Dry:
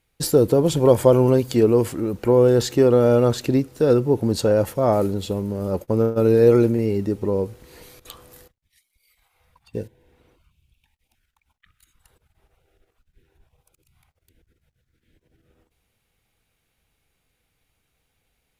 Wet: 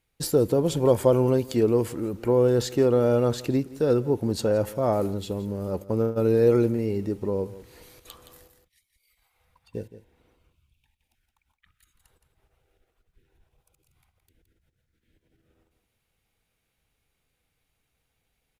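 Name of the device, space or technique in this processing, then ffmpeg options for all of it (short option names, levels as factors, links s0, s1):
ducked delay: -filter_complex "[0:a]asplit=3[s0][s1][s2];[s1]adelay=169,volume=0.398[s3];[s2]apad=whole_len=827394[s4];[s3][s4]sidechaincompress=threshold=0.0316:ratio=3:attack=5.7:release=905[s5];[s0][s5]amix=inputs=2:normalize=0,volume=0.562"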